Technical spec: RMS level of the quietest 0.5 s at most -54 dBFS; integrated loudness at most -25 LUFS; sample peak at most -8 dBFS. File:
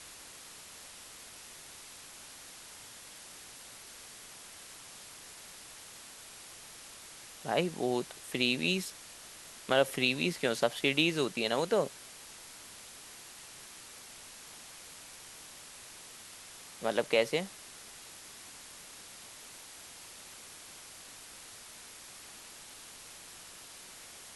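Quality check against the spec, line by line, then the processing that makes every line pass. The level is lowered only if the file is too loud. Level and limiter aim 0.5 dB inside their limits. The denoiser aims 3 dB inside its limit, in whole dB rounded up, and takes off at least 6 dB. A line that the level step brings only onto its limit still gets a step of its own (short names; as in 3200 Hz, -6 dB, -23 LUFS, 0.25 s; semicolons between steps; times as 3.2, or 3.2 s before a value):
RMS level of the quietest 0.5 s -50 dBFS: fail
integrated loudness -31.0 LUFS: OK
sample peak -11.5 dBFS: OK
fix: denoiser 7 dB, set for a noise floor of -50 dBFS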